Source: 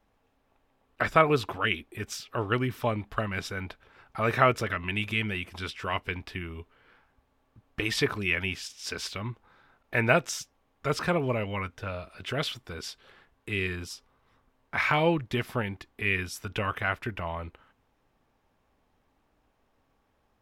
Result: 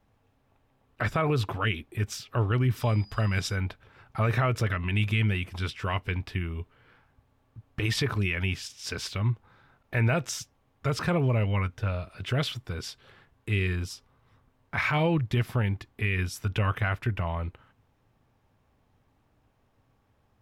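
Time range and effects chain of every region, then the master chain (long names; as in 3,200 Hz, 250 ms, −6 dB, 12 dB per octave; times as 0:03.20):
0:02.75–0:03.55: parametric band 6,900 Hz +7 dB 2 octaves + steady tone 4,900 Hz −52 dBFS
whole clip: parametric band 110 Hz +11.5 dB 1.2 octaves; brickwall limiter −16.5 dBFS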